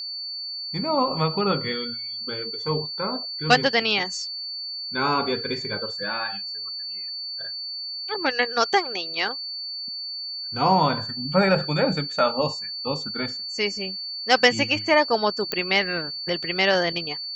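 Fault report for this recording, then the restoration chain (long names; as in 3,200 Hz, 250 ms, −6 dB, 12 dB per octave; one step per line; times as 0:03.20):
whistle 4,500 Hz −30 dBFS
0:15.52: click −9 dBFS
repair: click removal
notch filter 4,500 Hz, Q 30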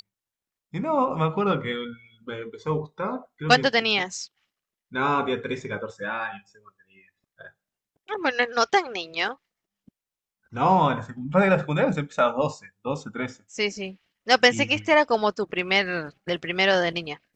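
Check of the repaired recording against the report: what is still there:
none of them is left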